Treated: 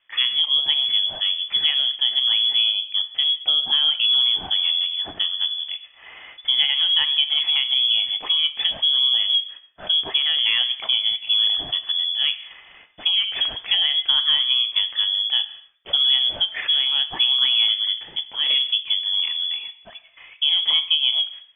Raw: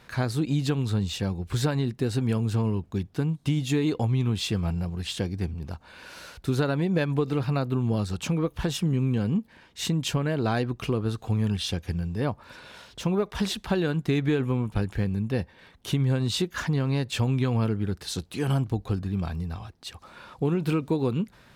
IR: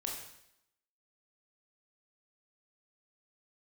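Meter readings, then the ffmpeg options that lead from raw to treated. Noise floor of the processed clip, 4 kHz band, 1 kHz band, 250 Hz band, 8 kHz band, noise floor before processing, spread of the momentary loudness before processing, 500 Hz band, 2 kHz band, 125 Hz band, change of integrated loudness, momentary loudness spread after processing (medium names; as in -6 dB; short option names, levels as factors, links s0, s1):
-50 dBFS, +23.0 dB, -3.5 dB, under -25 dB, under -40 dB, -56 dBFS, 9 LU, -17.0 dB, +6.5 dB, under -30 dB, +9.0 dB, 7 LU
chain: -filter_complex "[0:a]acontrast=39,agate=range=0.141:threshold=0.01:ratio=16:detection=peak,bandreject=f=207.4:t=h:w=4,bandreject=f=414.8:t=h:w=4,bandreject=f=622.2:t=h:w=4,bandreject=f=829.6:t=h:w=4,bandreject=f=1037:t=h:w=4,bandreject=f=1244.4:t=h:w=4,bandreject=f=1451.8:t=h:w=4,bandreject=f=1659.2:t=h:w=4,bandreject=f=1866.6:t=h:w=4,bandreject=f=2074:t=h:w=4,bandreject=f=2281.4:t=h:w=4,asplit=2[s0][s1];[1:a]atrim=start_sample=2205,afade=t=out:st=0.33:d=0.01,atrim=end_sample=14994,lowpass=f=2800:w=0.5412,lowpass=f=2800:w=1.3066[s2];[s1][s2]afir=irnorm=-1:irlink=0,volume=0.316[s3];[s0][s3]amix=inputs=2:normalize=0,lowpass=f=3000:t=q:w=0.5098,lowpass=f=3000:t=q:w=0.6013,lowpass=f=3000:t=q:w=0.9,lowpass=f=3000:t=q:w=2.563,afreqshift=-3500,volume=0.794"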